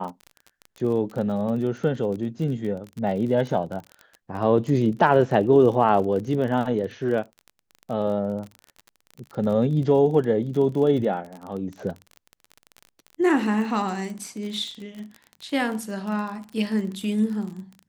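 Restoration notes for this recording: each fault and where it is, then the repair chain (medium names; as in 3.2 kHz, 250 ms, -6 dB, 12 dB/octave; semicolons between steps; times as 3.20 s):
crackle 33 per s -31 dBFS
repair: de-click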